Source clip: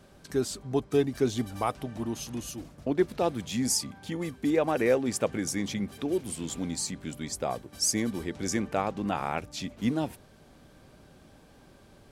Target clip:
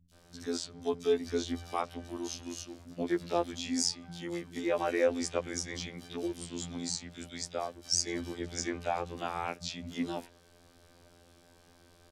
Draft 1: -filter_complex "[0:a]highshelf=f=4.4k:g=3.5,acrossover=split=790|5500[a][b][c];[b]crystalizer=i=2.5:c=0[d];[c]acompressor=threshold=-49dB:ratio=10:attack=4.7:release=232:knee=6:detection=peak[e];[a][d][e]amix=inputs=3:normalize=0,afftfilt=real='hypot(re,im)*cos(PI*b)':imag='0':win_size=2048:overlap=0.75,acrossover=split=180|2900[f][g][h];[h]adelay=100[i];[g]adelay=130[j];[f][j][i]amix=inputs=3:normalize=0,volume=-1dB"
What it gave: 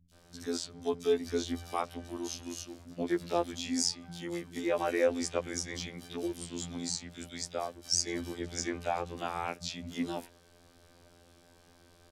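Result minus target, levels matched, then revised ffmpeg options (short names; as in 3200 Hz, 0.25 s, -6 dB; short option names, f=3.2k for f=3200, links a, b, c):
compressor: peak gain reduction -7.5 dB
-filter_complex "[0:a]highshelf=f=4.4k:g=3.5,acrossover=split=790|5500[a][b][c];[b]crystalizer=i=2.5:c=0[d];[c]acompressor=threshold=-57.5dB:ratio=10:attack=4.7:release=232:knee=6:detection=peak[e];[a][d][e]amix=inputs=3:normalize=0,afftfilt=real='hypot(re,im)*cos(PI*b)':imag='0':win_size=2048:overlap=0.75,acrossover=split=180|2900[f][g][h];[h]adelay=100[i];[g]adelay=130[j];[f][j][i]amix=inputs=3:normalize=0,volume=-1dB"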